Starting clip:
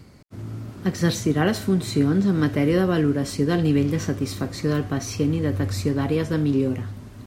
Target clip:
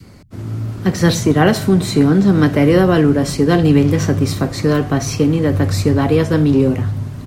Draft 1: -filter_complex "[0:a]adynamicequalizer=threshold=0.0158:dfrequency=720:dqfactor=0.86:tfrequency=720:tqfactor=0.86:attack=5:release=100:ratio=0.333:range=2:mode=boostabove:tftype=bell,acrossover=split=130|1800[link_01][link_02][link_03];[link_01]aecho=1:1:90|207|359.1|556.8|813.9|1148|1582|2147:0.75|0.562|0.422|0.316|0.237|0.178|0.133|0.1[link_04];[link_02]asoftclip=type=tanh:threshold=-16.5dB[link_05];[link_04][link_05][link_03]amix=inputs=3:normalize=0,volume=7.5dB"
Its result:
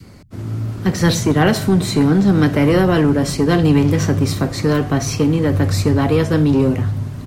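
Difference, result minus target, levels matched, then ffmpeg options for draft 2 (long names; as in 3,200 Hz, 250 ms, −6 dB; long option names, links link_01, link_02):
soft clipping: distortion +11 dB
-filter_complex "[0:a]adynamicequalizer=threshold=0.0158:dfrequency=720:dqfactor=0.86:tfrequency=720:tqfactor=0.86:attack=5:release=100:ratio=0.333:range=2:mode=boostabove:tftype=bell,acrossover=split=130|1800[link_01][link_02][link_03];[link_01]aecho=1:1:90|207|359.1|556.8|813.9|1148|1582|2147:0.75|0.562|0.422|0.316|0.237|0.178|0.133|0.1[link_04];[link_02]asoftclip=type=tanh:threshold=-9dB[link_05];[link_04][link_05][link_03]amix=inputs=3:normalize=0,volume=7.5dB"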